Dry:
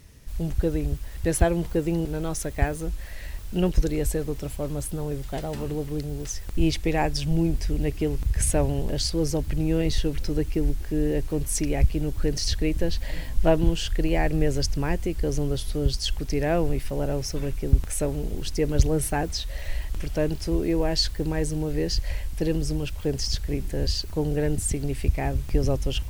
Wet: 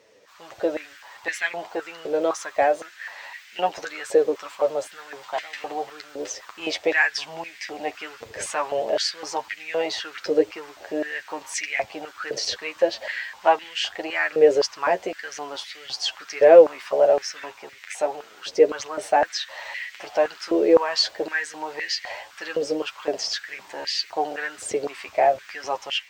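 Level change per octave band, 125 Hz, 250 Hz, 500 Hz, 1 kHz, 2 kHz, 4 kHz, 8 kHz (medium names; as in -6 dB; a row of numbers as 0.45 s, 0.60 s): under -25 dB, -6.5 dB, +7.0 dB, +9.5 dB, +10.0 dB, +3.5 dB, -3.0 dB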